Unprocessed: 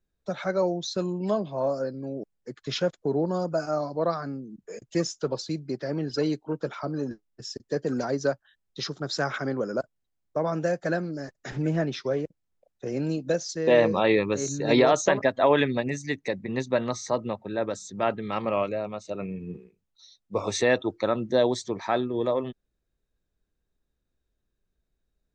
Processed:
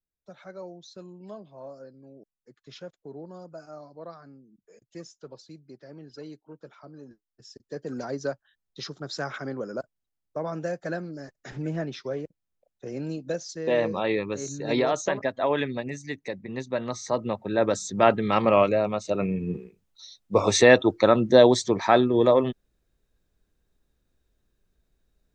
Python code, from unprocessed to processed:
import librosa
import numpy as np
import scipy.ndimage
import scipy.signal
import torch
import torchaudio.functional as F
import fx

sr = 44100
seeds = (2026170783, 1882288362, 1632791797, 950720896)

y = fx.gain(x, sr, db=fx.line((7.07, -15.5), (8.08, -4.5), (16.71, -4.5), (17.75, 7.0)))